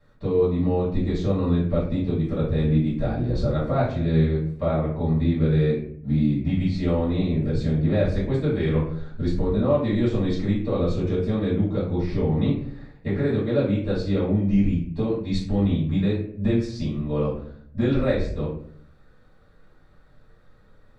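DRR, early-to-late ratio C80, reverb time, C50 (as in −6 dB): −11.5 dB, 9.0 dB, 0.60 s, 4.0 dB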